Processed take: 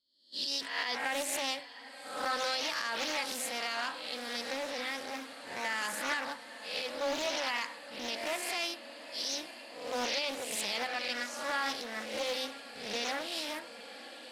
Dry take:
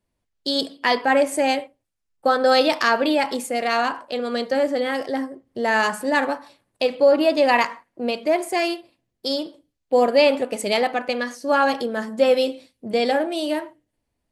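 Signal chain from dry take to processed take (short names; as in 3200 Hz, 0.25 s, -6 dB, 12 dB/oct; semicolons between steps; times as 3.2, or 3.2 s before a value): spectral swells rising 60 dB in 0.76 s; gate -32 dBFS, range -19 dB; passive tone stack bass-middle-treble 5-5-5; limiter -23 dBFS, peak gain reduction 10.5 dB; on a send: diffused feedback echo 0.912 s, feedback 74%, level -15 dB; on the sum: Doppler distortion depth 0.36 ms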